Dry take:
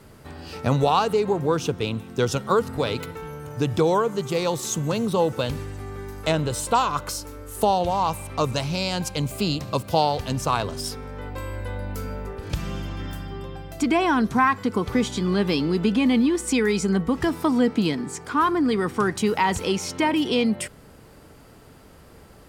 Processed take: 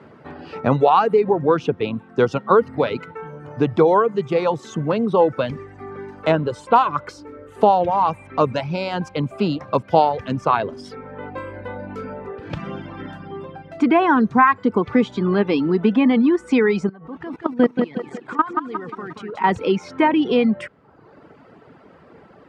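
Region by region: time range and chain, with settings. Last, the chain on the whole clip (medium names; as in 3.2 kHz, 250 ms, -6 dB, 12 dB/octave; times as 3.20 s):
16.89–19.44 s: level held to a coarse grid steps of 18 dB + bit-crushed delay 178 ms, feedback 55%, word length 8-bit, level -4 dB
whole clip: low-pass 2 kHz 12 dB/octave; reverb removal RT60 0.93 s; high-pass 170 Hz 12 dB/octave; trim +6.5 dB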